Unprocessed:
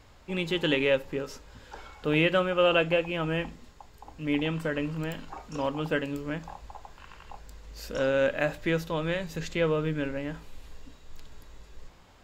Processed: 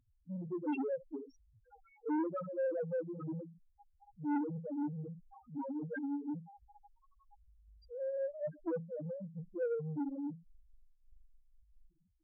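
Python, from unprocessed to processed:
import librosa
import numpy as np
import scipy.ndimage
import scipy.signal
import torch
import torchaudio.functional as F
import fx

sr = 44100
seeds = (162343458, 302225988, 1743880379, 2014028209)

y = fx.low_shelf(x, sr, hz=67.0, db=-8.0)
y = y + 0.31 * np.pad(y, (int(6.3 * sr / 1000.0), 0))[:len(y)]
y = fx.spec_topn(y, sr, count=1)
y = fx.small_body(y, sr, hz=(250.0, 3700.0), ring_ms=50, db=12)
y = fx.transformer_sat(y, sr, knee_hz=520.0)
y = F.gain(torch.from_numpy(y), -4.5).numpy()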